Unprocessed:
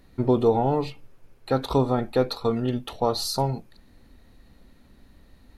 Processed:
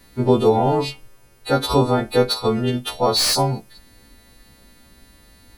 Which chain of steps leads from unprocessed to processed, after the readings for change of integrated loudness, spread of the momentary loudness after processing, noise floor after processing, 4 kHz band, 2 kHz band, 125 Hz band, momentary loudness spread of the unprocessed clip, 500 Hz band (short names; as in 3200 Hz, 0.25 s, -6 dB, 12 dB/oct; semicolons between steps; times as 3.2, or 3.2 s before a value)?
+6.0 dB, 8 LU, -52 dBFS, +11.5 dB, +10.5 dB, +4.5 dB, 8 LU, +5.0 dB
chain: frequency quantiser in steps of 2 st; slew limiter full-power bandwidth 470 Hz; gain +5.5 dB